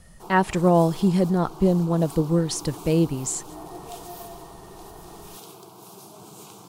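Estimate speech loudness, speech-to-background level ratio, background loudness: -22.5 LUFS, 19.0 dB, -41.5 LUFS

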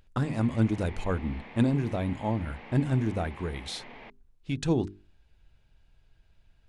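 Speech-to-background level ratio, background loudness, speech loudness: 17.0 dB, -47.0 LUFS, -30.0 LUFS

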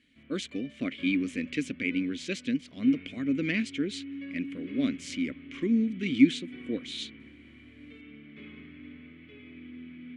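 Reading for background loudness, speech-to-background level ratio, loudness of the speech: -46.0 LUFS, 15.5 dB, -30.5 LUFS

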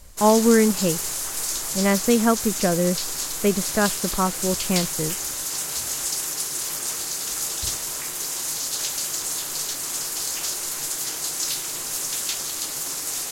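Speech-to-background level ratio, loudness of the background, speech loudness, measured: 3.0 dB, -25.0 LUFS, -22.0 LUFS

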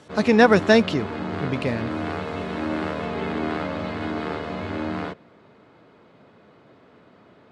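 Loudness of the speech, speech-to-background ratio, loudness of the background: -19.5 LUFS, 9.5 dB, -29.0 LUFS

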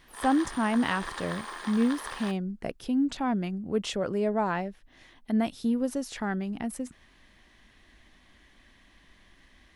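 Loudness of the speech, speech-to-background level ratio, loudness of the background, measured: -29.5 LUFS, 9.5 dB, -39.0 LUFS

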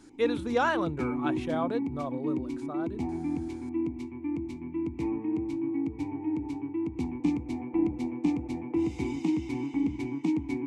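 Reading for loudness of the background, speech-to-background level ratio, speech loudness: -32.0 LUFS, 0.0 dB, -32.0 LUFS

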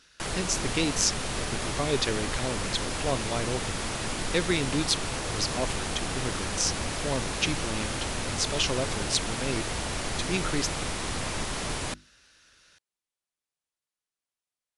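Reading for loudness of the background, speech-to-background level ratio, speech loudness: -31.5 LUFS, 1.0 dB, -30.5 LUFS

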